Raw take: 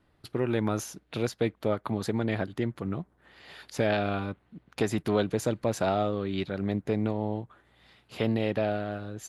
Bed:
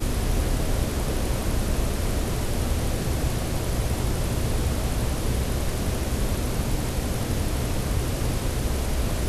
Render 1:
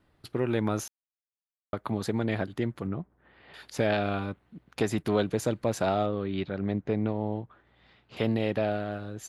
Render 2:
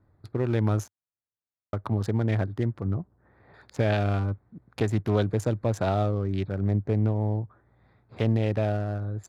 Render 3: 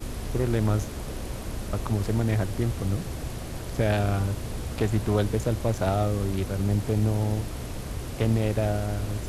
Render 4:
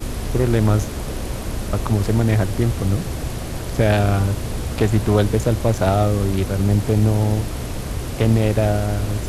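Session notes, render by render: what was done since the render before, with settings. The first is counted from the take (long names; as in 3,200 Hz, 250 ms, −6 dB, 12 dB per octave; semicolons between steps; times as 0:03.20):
0:00.88–0:01.73: silence; 0:02.87–0:03.54: high-frequency loss of the air 400 metres; 0:06.06–0:08.17: high-frequency loss of the air 150 metres
adaptive Wiener filter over 15 samples; parametric band 100 Hz +11 dB 0.64 octaves
mix in bed −8.5 dB
level +7.5 dB; brickwall limiter −3 dBFS, peak gain reduction 1 dB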